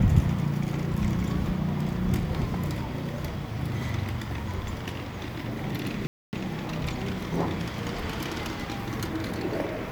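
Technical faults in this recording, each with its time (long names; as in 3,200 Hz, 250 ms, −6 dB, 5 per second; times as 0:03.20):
0:06.07–0:06.33: drop-out 259 ms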